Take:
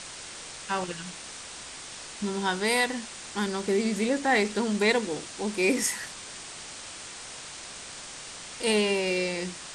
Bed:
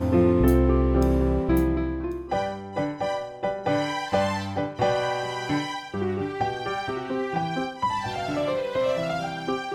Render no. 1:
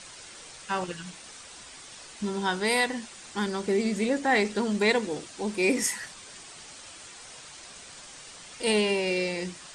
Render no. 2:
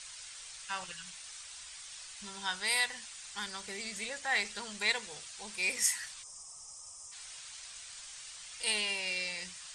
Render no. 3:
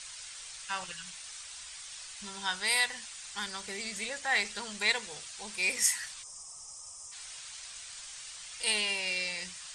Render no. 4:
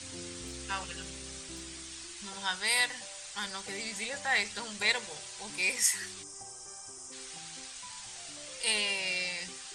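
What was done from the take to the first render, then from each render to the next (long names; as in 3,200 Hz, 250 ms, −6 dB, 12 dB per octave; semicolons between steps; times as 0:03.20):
broadband denoise 7 dB, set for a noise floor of −42 dBFS
guitar amp tone stack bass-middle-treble 10-0-10; 0:06.23–0:07.12: gain on a spectral selection 1,300–4,900 Hz −19 dB
level +2.5 dB
mix in bed −27 dB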